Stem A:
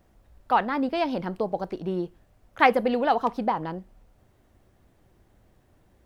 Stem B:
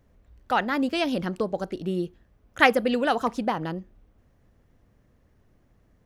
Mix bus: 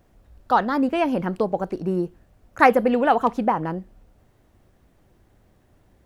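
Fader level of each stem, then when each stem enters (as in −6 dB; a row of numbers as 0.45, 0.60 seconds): +1.5, −4.0 decibels; 0.00, 0.00 seconds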